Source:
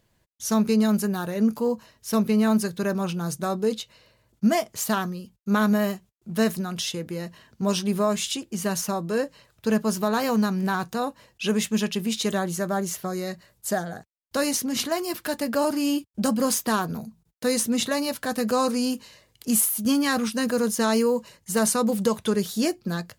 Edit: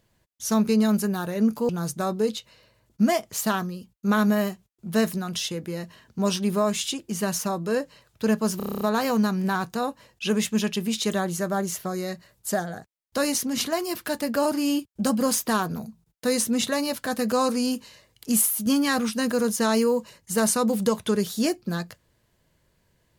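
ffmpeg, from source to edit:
-filter_complex "[0:a]asplit=10[a][b][c][d][e][f][g][h][i][j];[a]atrim=end=1.692[k];[b]atrim=start=3.118:end=10.032[l];[c]atrim=start=9.998:end=10.032[m];[d]atrim=start=9.998:end=10.032[n];[e]atrim=start=9.998:end=10.032[o];[f]atrim=start=9.998:end=10.032[p];[g]atrim=start=9.998:end=10.032[q];[h]atrim=start=9.998:end=10.032[r];[i]atrim=start=9.998:end=10.032[s];[j]atrim=start=9.998[t];[k][l]acrossfade=d=0.004:c1=hsin:c2=hsin[u];[u][m]acrossfade=d=0.004:c1=hsin:c2=hsin[v];[v][n]acrossfade=d=0.004:c1=hsin:c2=hsin[w];[w][o]acrossfade=d=0.004:c1=hsin:c2=hsin[x];[x][p]acrossfade=d=0.004:c1=hsin:c2=hsin[y];[y][q]acrossfade=d=0.004:c1=hsin:c2=hsin[z];[z][r]acrossfade=d=0.004:c1=hsin:c2=hsin[aa];[aa][s]acrossfade=d=0.004:c1=hsin:c2=hsin[ab];[ab][t]acrossfade=d=0.004:c1=hsin:c2=hsin"

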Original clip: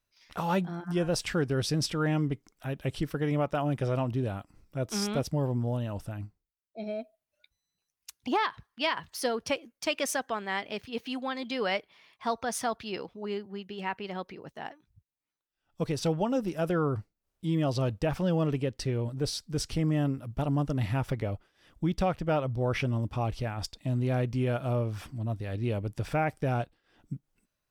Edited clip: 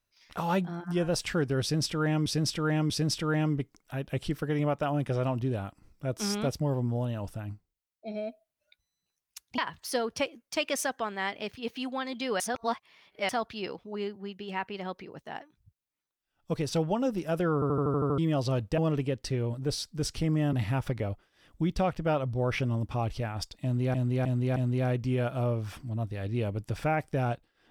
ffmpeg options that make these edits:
-filter_complex "[0:a]asplit=19[a][b][c][d][e][f][g][h][i][j][k][l][m][n][o][p][q][r][s];[a]atrim=end=2.262[t];[b]atrim=start=1.618:end=2.262[u];[c]atrim=start=1.618:end=8.302[v];[d]atrim=start=8.878:end=11.702[w];[e]atrim=start=11.698:end=12.592,asetpts=PTS-STARTPTS,areverse[x];[f]atrim=start=12.588:end=16.922[y];[g]atrim=start=16.838:end=16.922[z];[h]atrim=start=16.838:end=16.922[aa];[i]atrim=start=16.838:end=16.922[ab];[j]atrim=start=16.838:end=16.922[ac];[k]atrim=start=16.838:end=16.922[ad];[l]atrim=start=16.838:end=16.922[ae];[m]atrim=start=16.838:end=16.922[af];[n]atrim=start=17.478:end=18.082[ag];[o]atrim=start=18.328:end=20.082[ah];[p]atrim=start=20.748:end=24.162[ai];[q]atrim=start=23.848:end=24.162[aj];[r]atrim=start=23.848:end=24.162[ak];[s]atrim=start=23.848[al];[t][u]acrossfade=d=0.004:c1=hsin:c2=hsin[am];[am][v]acrossfade=d=0.004:c1=hsin:c2=hsin[an];[an][w]acrossfade=d=0.004:c1=hsin:c2=hsin[ao];[ao][x]acrossfade=d=0.004:c1=hsin:c2=hsin[ap];[ap][y]acrossfade=d=0.004:c1=hsin:c2=hsin[aq];[aq][z]acrossfade=d=0.004:c1=hsin:c2=hsin[ar];[ar][aa]acrossfade=d=0.004:c1=hsin:c2=hsin[as];[as][ab]acrossfade=d=0.004:c1=hsin:c2=hsin[at];[at][ac]acrossfade=d=0.004:c1=hsin:c2=hsin[au];[au][ad]acrossfade=d=0.004:c1=hsin:c2=hsin[av];[av][ae]acrossfade=d=0.004:c1=hsin:c2=hsin[aw];[aw][af]acrossfade=d=0.004:c1=hsin:c2=hsin[ax];[ax][ag]acrossfade=d=0.004:c1=hsin:c2=hsin[ay];[ay][ah]acrossfade=d=0.004:c1=hsin:c2=hsin[az];[az][ai]acrossfade=d=0.004:c1=hsin:c2=hsin[ba];[ba][aj]acrossfade=d=0.004:c1=hsin:c2=hsin[bb];[bb][ak]acrossfade=d=0.004:c1=hsin:c2=hsin[bc];[bc][al]acrossfade=d=0.004:c1=hsin:c2=hsin"

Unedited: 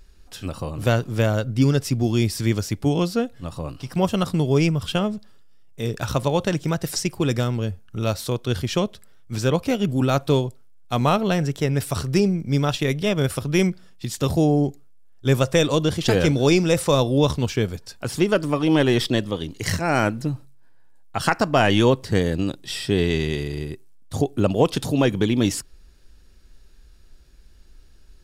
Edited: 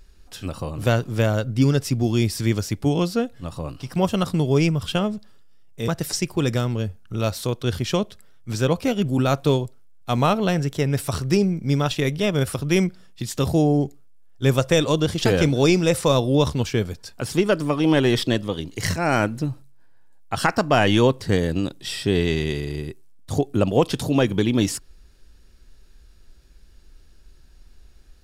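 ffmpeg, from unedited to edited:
-filter_complex "[0:a]asplit=2[a][b];[a]atrim=end=5.882[c];[b]atrim=start=6.708[d];[c][d]acrossfade=d=0.004:c1=hsin:c2=hsin"

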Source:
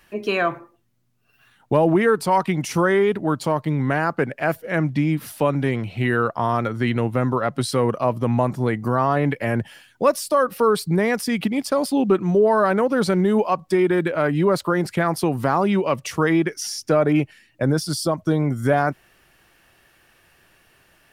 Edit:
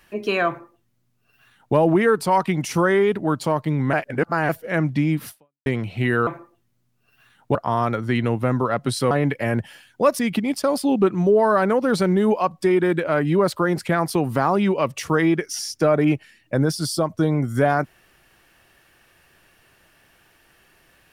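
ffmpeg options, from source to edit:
-filter_complex "[0:a]asplit=8[a][b][c][d][e][f][g][h];[a]atrim=end=3.932[i];[b]atrim=start=3.928:end=4.492,asetpts=PTS-STARTPTS,areverse[j];[c]atrim=start=4.488:end=5.66,asetpts=PTS-STARTPTS,afade=t=out:st=0.802:d=0.37:c=exp[k];[d]atrim=start=5.66:end=6.272,asetpts=PTS-STARTPTS,afade=t=in:d=0.004:c=hsin[l];[e]atrim=start=0.478:end=1.762[m];[f]atrim=start=6.268:end=7.832[n];[g]atrim=start=9.118:end=10.202[o];[h]atrim=start=11.268[p];[i][j]acrossfade=d=0.004:c1=hsin:c2=hsin[q];[k][l]concat=n=2:v=0:a=1[r];[q][r]acrossfade=d=0.004:c1=hsin:c2=hsin[s];[s][m]acrossfade=d=0.004:c1=hsin:c2=hsin[t];[t][n]acrossfade=d=0.004:c1=hsin:c2=hsin[u];[u][o]acrossfade=d=0.004:c1=hsin:c2=hsin[v];[v][p]acrossfade=d=0.004:c1=hsin:c2=hsin"

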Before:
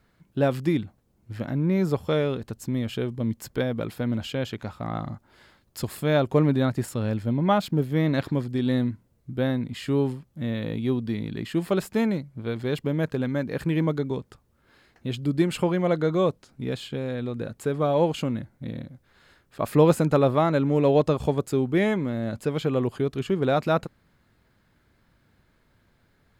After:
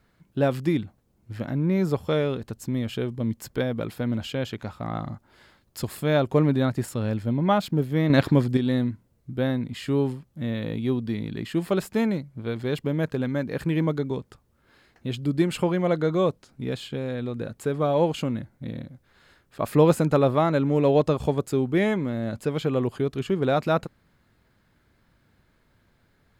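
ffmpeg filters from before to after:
-filter_complex "[0:a]asplit=3[a][b][c];[a]atrim=end=8.102[d];[b]atrim=start=8.098:end=8.572,asetpts=PTS-STARTPTS,volume=6.5dB[e];[c]atrim=start=8.568[f];[d][e]acrossfade=d=0.004:c1=hsin:c2=hsin[g];[g][f]acrossfade=d=0.004:c1=hsin:c2=hsin"

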